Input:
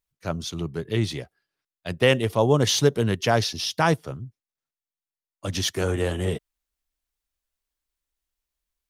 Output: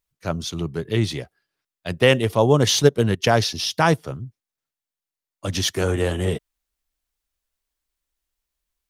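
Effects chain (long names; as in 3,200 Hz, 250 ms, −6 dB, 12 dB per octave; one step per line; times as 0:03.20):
0:02.82–0:03.28: transient designer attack +5 dB, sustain −9 dB
level +3 dB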